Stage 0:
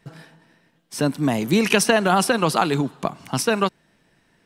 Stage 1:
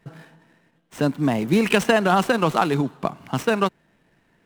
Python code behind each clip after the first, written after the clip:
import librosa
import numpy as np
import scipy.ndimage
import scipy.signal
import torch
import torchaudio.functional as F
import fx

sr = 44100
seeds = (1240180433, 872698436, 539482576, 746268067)

y = scipy.signal.medfilt(x, 9)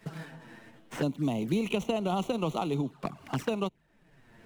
y = fx.low_shelf(x, sr, hz=77.0, db=5.5)
y = fx.env_flanger(y, sr, rest_ms=9.4, full_db=-18.5)
y = fx.band_squash(y, sr, depth_pct=70)
y = F.gain(torch.from_numpy(y), -9.0).numpy()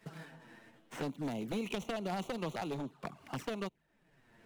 y = np.minimum(x, 2.0 * 10.0 ** (-26.0 / 20.0) - x)
y = fx.low_shelf(y, sr, hz=170.0, db=-5.5)
y = F.gain(torch.from_numpy(y), -5.5).numpy()